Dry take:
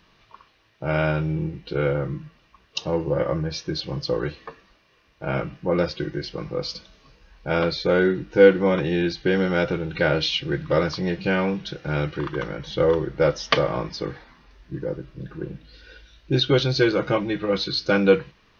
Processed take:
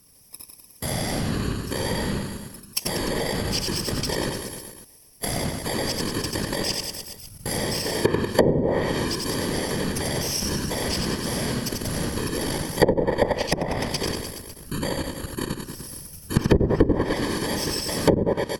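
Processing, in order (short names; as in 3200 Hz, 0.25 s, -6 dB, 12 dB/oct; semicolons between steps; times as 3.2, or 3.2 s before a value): FFT order left unsorted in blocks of 32 samples; low shelf 98 Hz +4 dB; whisperiser; wow and flutter 18 cents; level quantiser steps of 17 dB; reverse bouncing-ball echo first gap 90 ms, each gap 1.1×, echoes 5; treble ducked by the level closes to 300 Hz, closed at -16.5 dBFS; high shelf 4100 Hz +11 dB; gain +6.5 dB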